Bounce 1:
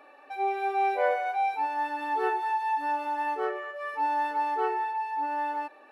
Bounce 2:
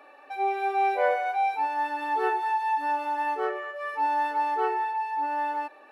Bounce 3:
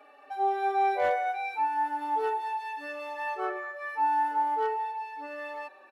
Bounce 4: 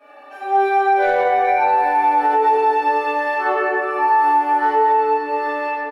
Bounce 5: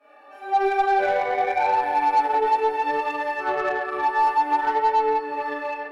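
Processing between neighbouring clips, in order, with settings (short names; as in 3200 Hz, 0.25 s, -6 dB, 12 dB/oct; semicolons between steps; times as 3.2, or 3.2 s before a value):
Bessel high-pass 230 Hz; gain +2 dB
tone controls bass -3 dB, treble 0 dB; overloaded stage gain 17 dB; endless flanger 4.4 ms -0.41 Hz
doubler 16 ms -11 dB; reverb RT60 3.4 s, pre-delay 3 ms, DRR -16.5 dB; limiter -6 dBFS, peak gain reduction 7.5 dB; gain -2.5 dB
chorus voices 2, 0.59 Hz, delay 25 ms, depth 4.3 ms; added harmonics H 3 -13 dB, 4 -28 dB, 6 -25 dB, 8 -31 dB, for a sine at -8 dBFS; soft clip -17.5 dBFS, distortion -14 dB; gain +5.5 dB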